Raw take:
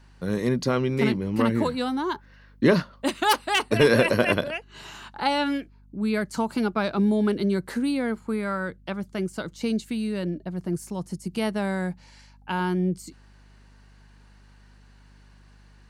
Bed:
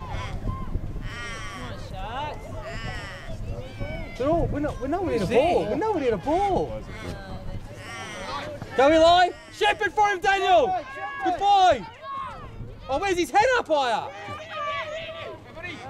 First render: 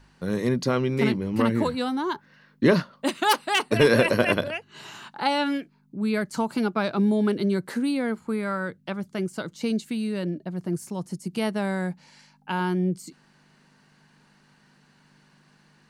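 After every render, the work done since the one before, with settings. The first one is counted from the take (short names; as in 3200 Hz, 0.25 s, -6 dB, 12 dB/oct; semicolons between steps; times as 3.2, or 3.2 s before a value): de-hum 50 Hz, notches 2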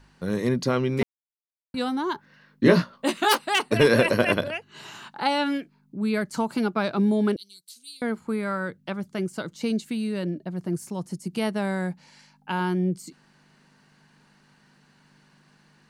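1.03–1.74 mute; 2.63–3.39 doubler 17 ms -4 dB; 7.36–8.02 inverse Chebyshev high-pass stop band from 1900 Hz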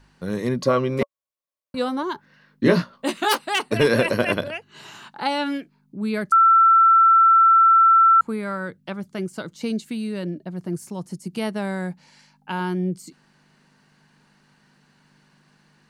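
0.6–2.03 small resonant body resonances 570/1100 Hz, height 15 dB; 6.32–8.21 bleep 1340 Hz -10.5 dBFS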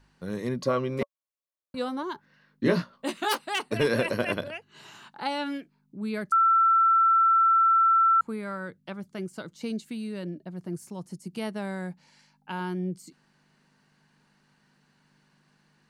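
gain -6.5 dB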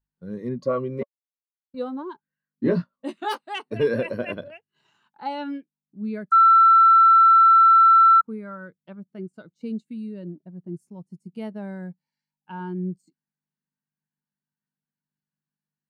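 sample leveller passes 1; spectral expander 1.5:1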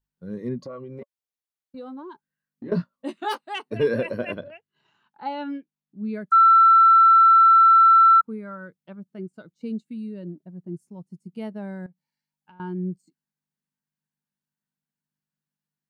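0.64–2.72 compressor 5:1, threshold -35 dBFS; 4.38–6.09 air absorption 100 m; 11.86–12.6 compressor 8:1, threshold -49 dBFS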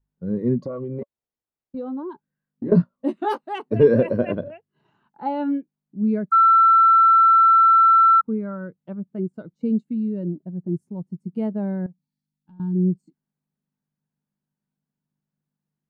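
11.96–12.75 spectral gain 330–3200 Hz -14 dB; tilt shelf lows +9.5 dB, about 1300 Hz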